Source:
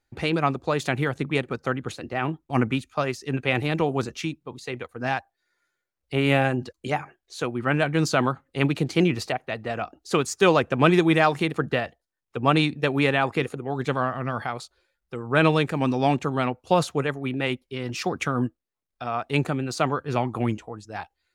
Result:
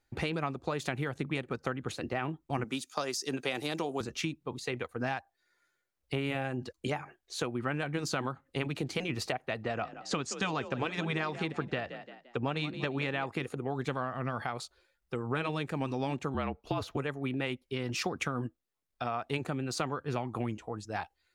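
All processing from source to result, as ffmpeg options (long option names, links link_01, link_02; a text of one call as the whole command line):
ffmpeg -i in.wav -filter_complex "[0:a]asettb=1/sr,asplit=3[link_01][link_02][link_03];[link_01]atrim=end=2.644[link_04];[link_02]atrim=start=2.64:end=4.01,asetpts=PTS-STARTPTS,afade=type=in:duration=0.004:curve=qsin,afade=type=out:start_time=1.366:duration=0.004:curve=qsin,highpass=240,highshelf=frequency=3400:width_type=q:width=1.5:gain=9,bandreject=frequency=4200:width=15[link_05];[link_03]atrim=start=4.006[link_06];[link_04][link_05]acrossfade=duration=0.004:curve1=hsin:curve2=qsin[link_07];[link_07][link_06]acrossfade=duration=0.004:curve1=qsin:curve2=hsin,asettb=1/sr,asplit=3[link_08][link_09][link_10];[link_08]atrim=end=9.634[link_11];[link_09]atrim=start=9.63:end=13.26,asetpts=PTS-STARTPTS,afade=type=in:duration=0.004:curve=qsin,afade=type=out:start_time=3.626:duration=0.004:curve=qsin,lowpass=frequency=7600:width=0.5412,lowpass=frequency=7600:width=1.3066,asplit=4[link_12][link_13][link_14][link_15];[link_13]adelay=173,afreqshift=38,volume=-17.5dB[link_16];[link_14]adelay=346,afreqshift=76,volume=-26.1dB[link_17];[link_15]adelay=519,afreqshift=114,volume=-34.8dB[link_18];[link_12][link_16][link_17][link_18]amix=inputs=4:normalize=0,atrim=end_sample=160083[link_19];[link_10]atrim=start=13.256[link_20];[link_11][link_19]acrossfade=duration=0.004:curve1=hsin:curve2=qsin[link_21];[link_21][link_20]acrossfade=duration=0.004:curve1=qsin:curve2=hsin,asettb=1/sr,asplit=3[link_22][link_23][link_24];[link_22]atrim=end=16.344[link_25];[link_23]atrim=start=16.34:end=16.97,asetpts=PTS-STARTPTS,afade=type=in:duration=0.004:curve=qsin,afade=type=out:start_time=0.626:duration=0.004:curve=qsin,equalizer=frequency=8400:width=1.2:gain=-12,afreqshift=-44[link_26];[link_24]atrim=start=16.966[link_27];[link_25][link_26]acrossfade=duration=0.004:curve1=hsin:curve2=qsin[link_28];[link_28][link_27]acrossfade=duration=0.004:curve1=qsin:curve2=hsin,afftfilt=real='re*lt(hypot(re,im),0.794)':imag='im*lt(hypot(re,im),0.794)':win_size=1024:overlap=0.75,acompressor=threshold=-30dB:ratio=6" out.wav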